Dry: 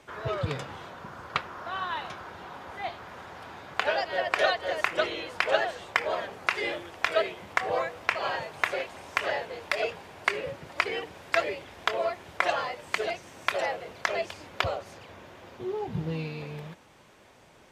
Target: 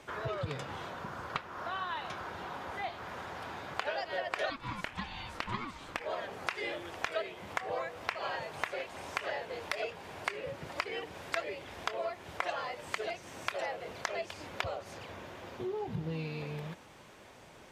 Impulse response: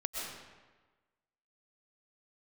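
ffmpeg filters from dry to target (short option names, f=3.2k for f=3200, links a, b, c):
-filter_complex "[0:a]acompressor=threshold=-38dB:ratio=2.5,asplit=3[a][b][c];[a]afade=t=out:st=4.49:d=0.02[d];[b]aeval=exprs='val(0)*sin(2*PI*430*n/s)':c=same,afade=t=in:st=4.49:d=0.02,afade=t=out:st=5.99:d=0.02[e];[c]afade=t=in:st=5.99:d=0.02[f];[d][e][f]amix=inputs=3:normalize=0,volume=1.5dB"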